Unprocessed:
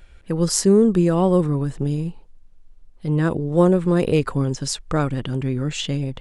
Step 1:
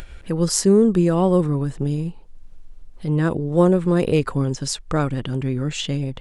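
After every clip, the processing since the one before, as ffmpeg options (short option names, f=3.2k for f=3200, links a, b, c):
-af "acompressor=mode=upward:threshold=-27dB:ratio=2.5"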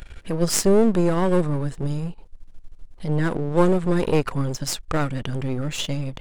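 -af "aeval=exprs='if(lt(val(0),0),0.251*val(0),val(0))':c=same,volume=2.5dB"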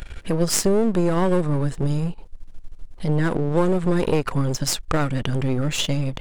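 -af "acompressor=threshold=-21dB:ratio=3,volume=4.5dB"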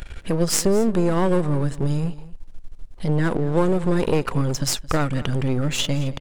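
-af "aecho=1:1:221:0.119"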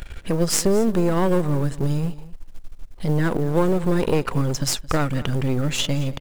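-af "acrusher=bits=8:mode=log:mix=0:aa=0.000001"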